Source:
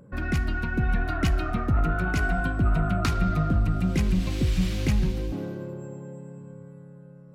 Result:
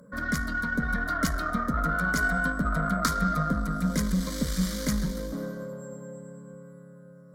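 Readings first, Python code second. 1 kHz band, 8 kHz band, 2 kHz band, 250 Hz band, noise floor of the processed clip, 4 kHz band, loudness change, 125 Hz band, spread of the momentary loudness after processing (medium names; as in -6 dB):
+3.0 dB, +7.0 dB, +4.0 dB, -1.0 dB, -49 dBFS, +0.5 dB, -2.0 dB, -6.5 dB, 16 LU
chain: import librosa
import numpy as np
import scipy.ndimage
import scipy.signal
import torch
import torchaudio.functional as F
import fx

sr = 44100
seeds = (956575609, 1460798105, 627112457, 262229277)

y = scipy.signal.sosfilt(scipy.signal.butter(2, 43.0, 'highpass', fs=sr, output='sos'), x)
y = fx.tilt_eq(y, sr, slope=1.5)
y = fx.cheby_harmonics(y, sr, harmonics=(8,), levels_db=(-26,), full_scale_db=-12.0)
y = fx.fixed_phaser(y, sr, hz=530.0, stages=8)
y = y * librosa.db_to_amplitude(4.0)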